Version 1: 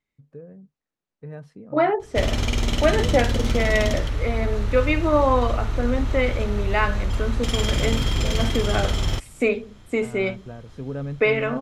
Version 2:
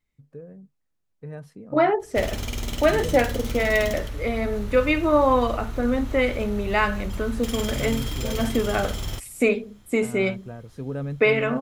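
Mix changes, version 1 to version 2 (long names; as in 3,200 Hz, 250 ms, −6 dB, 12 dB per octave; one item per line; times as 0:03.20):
second voice: remove high-pass filter 210 Hz 12 dB per octave
background −7.5 dB
master: remove high-frequency loss of the air 60 metres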